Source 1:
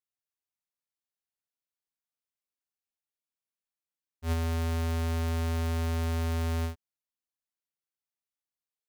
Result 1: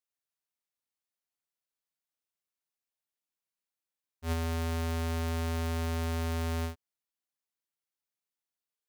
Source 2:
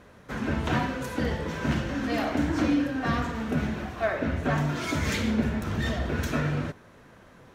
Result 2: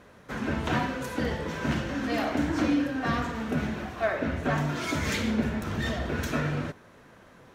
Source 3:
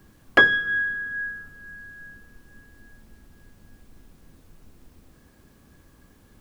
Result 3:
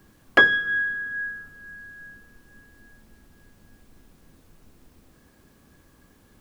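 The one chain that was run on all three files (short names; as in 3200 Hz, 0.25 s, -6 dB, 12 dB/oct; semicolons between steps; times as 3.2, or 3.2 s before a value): low shelf 140 Hz -4.5 dB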